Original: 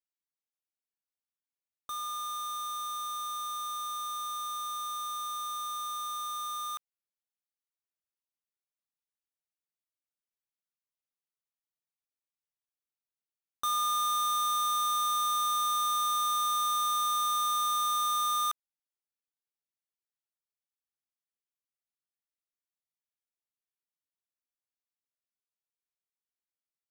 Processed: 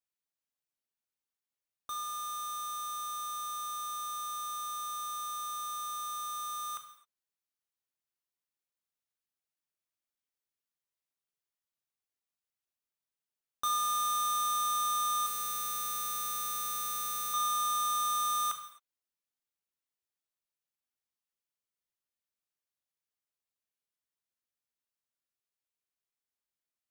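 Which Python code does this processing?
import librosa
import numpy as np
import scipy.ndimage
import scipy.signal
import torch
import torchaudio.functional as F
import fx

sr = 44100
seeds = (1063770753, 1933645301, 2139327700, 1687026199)

y = fx.comb(x, sr, ms=2.1, depth=0.59, at=(15.26, 17.34))
y = fx.rev_gated(y, sr, seeds[0], gate_ms=290, shape='falling', drr_db=5.5)
y = y * 10.0 ** (-1.0 / 20.0)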